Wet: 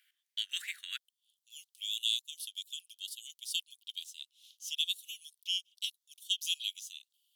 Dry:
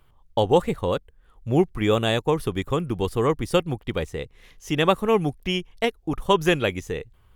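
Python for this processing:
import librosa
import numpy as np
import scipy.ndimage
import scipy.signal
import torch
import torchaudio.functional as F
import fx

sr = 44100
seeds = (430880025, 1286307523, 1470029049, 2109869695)

y = fx.steep_highpass(x, sr, hz=fx.steps((0.0, 1600.0), (0.96, 3000.0)), slope=72)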